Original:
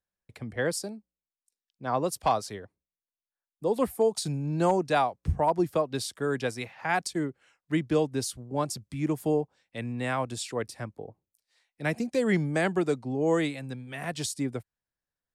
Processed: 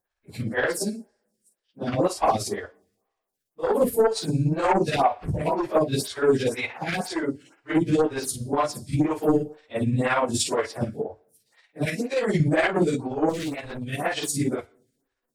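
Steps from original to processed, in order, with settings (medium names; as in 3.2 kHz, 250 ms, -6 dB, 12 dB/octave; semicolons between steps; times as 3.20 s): phase randomisation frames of 100 ms; 11.85–12.40 s: high-pass 530 Hz 6 dB/octave; in parallel at -2 dB: compression, threshold -34 dBFS, peak gain reduction 15.5 dB; on the sum: sine folder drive 6 dB, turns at -11 dBFS; tremolo 17 Hz, depth 50%; 13.29–13.89 s: overload inside the chain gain 25 dB; on a send at -19 dB: reverberation, pre-delay 3 ms; on the sum: lamp-driven phase shifter 2 Hz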